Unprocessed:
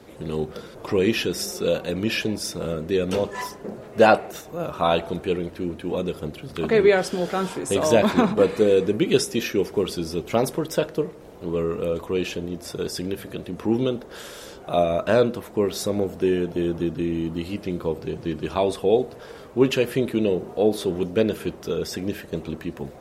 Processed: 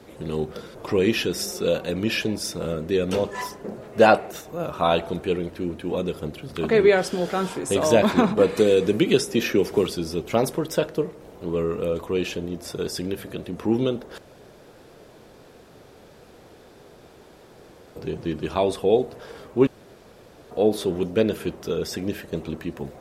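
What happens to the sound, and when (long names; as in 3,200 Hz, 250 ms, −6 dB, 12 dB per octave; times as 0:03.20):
0:08.57–0:09.87: multiband upward and downward compressor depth 70%
0:14.18–0:17.96: fill with room tone
0:19.67–0:20.51: fill with room tone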